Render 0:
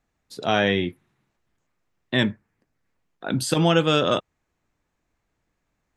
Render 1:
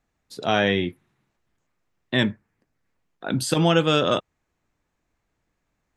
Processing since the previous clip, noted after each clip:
no processing that can be heard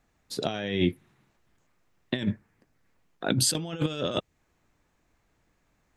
compressor whose output falls as the input rises −25 dBFS, ratio −0.5
dynamic equaliser 1,100 Hz, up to −7 dB, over −42 dBFS, Q 0.84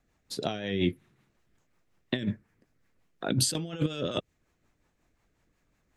rotating-speaker cabinet horn 5.5 Hz

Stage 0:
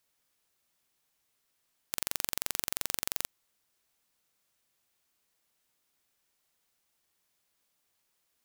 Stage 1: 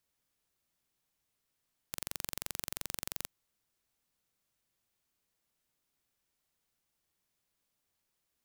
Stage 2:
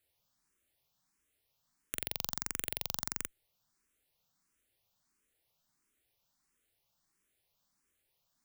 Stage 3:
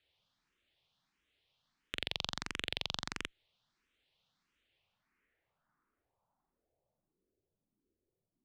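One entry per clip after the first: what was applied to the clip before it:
low-shelf EQ 280 Hz +8 dB; level −6 dB
frequency shifter mixed with the dry sound +1.5 Hz; level +5.5 dB
low-pass filter sweep 3,400 Hz → 370 Hz, 0:04.58–0:07.44; level +1 dB

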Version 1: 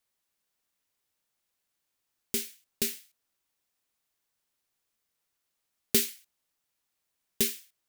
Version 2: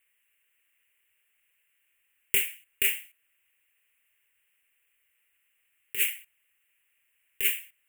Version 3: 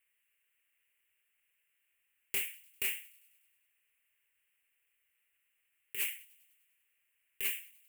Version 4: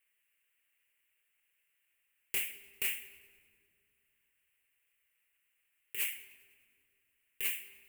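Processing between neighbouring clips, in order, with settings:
drawn EQ curve 100 Hz 0 dB, 150 Hz −22 dB, 480 Hz 0 dB, 720 Hz −8 dB, 1,300 Hz 0 dB, 1,900 Hz +13 dB, 2,800 Hz +15 dB, 4,600 Hz −28 dB, 7,800 Hz +2 dB, 14,000 Hz +7 dB; compressor whose output falls as the input rises −23 dBFS, ratio −0.5
soft clipping −20.5 dBFS, distortion −12 dB; delay with a high-pass on its return 99 ms, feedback 66%, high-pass 3,200 Hz, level −23 dB; level −6 dB
rectangular room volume 3,600 cubic metres, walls mixed, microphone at 0.65 metres

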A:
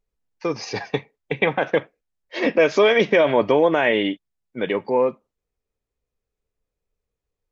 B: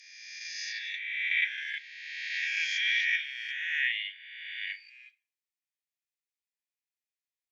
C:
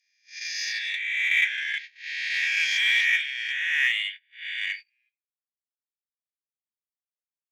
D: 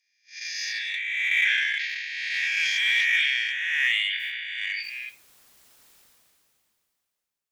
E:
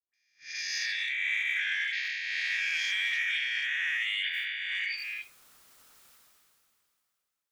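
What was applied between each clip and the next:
peak hold with a rise ahead of every peak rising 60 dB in 1.88 s; Butterworth high-pass 1,700 Hz 96 dB per octave; convolution reverb RT60 0.40 s, pre-delay 25 ms, DRR 17 dB; level −8.5 dB
noise gate −43 dBFS, range −29 dB; in parallel at −6.5 dB: soft clipping −33 dBFS, distortion −7 dB; on the sum: level +4.5 dB
level that may fall only so fast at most 22 dB per second; level −1 dB
parametric band 1,300 Hz +7 dB 0.4 octaves; brickwall limiter −20.5 dBFS, peak gain reduction 9.5 dB; all-pass dispersion highs, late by 140 ms, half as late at 790 Hz; level −2 dB

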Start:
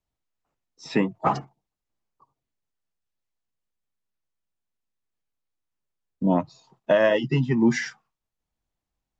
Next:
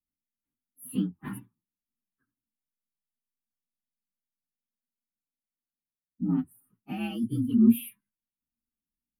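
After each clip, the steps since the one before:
partials spread apart or drawn together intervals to 123%
drawn EQ curve 140 Hz 0 dB, 240 Hz +15 dB, 590 Hz −20 dB, 910 Hz −10 dB, 1,400 Hz −10 dB, 2,900 Hz −1 dB, 6,300 Hz −29 dB, 9,800 Hz +13 dB
level −9 dB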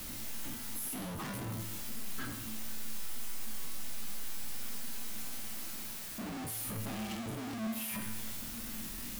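sign of each sample alone
tuned comb filter 110 Hz, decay 1 s, harmonics all, mix 80%
level +5 dB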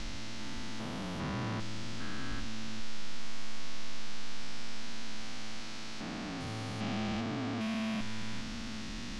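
spectrum averaged block by block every 400 ms
low-pass filter 5,600 Hz 24 dB per octave
level +6 dB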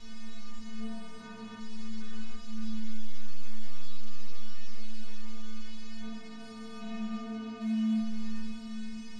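stiff-string resonator 220 Hz, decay 0.6 s, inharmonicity 0.008
level +9 dB

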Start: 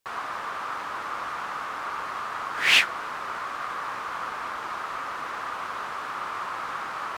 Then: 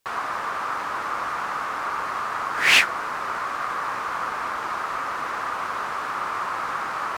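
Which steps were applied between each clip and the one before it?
dynamic equaliser 3,300 Hz, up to −5 dB, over −45 dBFS, Q 1.8
level +5 dB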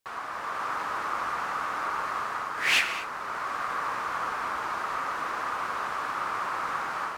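automatic gain control gain up to 5 dB
reverb whose tail is shaped and stops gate 260 ms flat, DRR 9.5 dB
level −8.5 dB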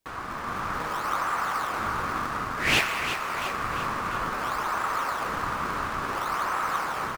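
in parallel at −7 dB: sample-and-hold swept by an LFO 26×, swing 160% 0.57 Hz
on the sum: repeating echo 347 ms, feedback 59%, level −9 dB

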